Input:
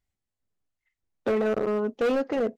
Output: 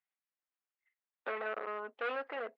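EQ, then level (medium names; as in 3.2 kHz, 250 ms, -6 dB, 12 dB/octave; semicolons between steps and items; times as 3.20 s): high-pass 1.2 kHz 12 dB/octave; Bessel low-pass 2.2 kHz, order 4; distance through air 98 m; +1.0 dB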